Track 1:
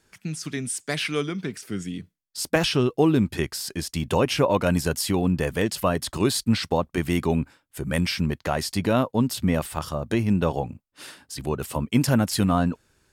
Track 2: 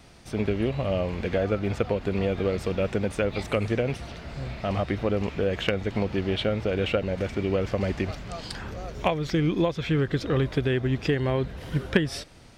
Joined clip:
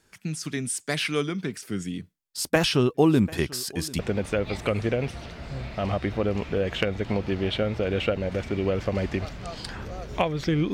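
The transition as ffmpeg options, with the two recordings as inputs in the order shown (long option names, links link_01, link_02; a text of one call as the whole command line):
ffmpeg -i cue0.wav -i cue1.wav -filter_complex "[0:a]asplit=3[link_01][link_02][link_03];[link_01]afade=type=out:start_time=2.94:duration=0.02[link_04];[link_02]aecho=1:1:742|1484:0.0944|0.0293,afade=type=in:start_time=2.94:duration=0.02,afade=type=out:start_time=3.99:duration=0.02[link_05];[link_03]afade=type=in:start_time=3.99:duration=0.02[link_06];[link_04][link_05][link_06]amix=inputs=3:normalize=0,apad=whole_dur=10.73,atrim=end=10.73,atrim=end=3.992[link_07];[1:a]atrim=start=2.848:end=9.59[link_08];[link_07][link_08]acrossfade=duration=0.004:curve1=hsin:curve2=hsin" out.wav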